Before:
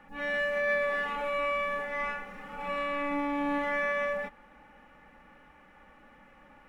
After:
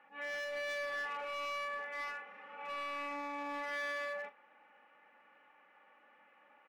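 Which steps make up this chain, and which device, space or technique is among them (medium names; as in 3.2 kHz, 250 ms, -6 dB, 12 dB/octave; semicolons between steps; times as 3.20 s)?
megaphone (band-pass 480–3100 Hz; peaking EQ 2.7 kHz +4 dB 0.45 oct; hard clipper -29.5 dBFS, distortion -13 dB; doubling 41 ms -12 dB); trim -7 dB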